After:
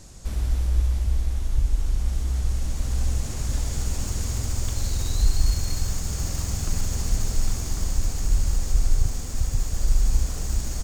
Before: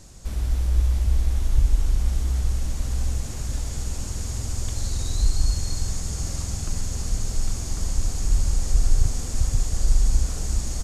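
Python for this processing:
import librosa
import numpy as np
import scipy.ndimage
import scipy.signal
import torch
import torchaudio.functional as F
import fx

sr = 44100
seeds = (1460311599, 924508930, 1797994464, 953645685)

y = fx.tracing_dist(x, sr, depth_ms=0.028)
y = fx.rider(y, sr, range_db=5, speed_s=2.0)
y = F.gain(torch.from_numpy(y), -1.0).numpy()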